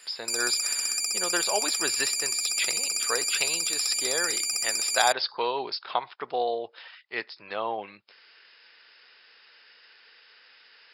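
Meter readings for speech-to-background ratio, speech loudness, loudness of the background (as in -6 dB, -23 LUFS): -5.0 dB, -30.5 LUFS, -25.5 LUFS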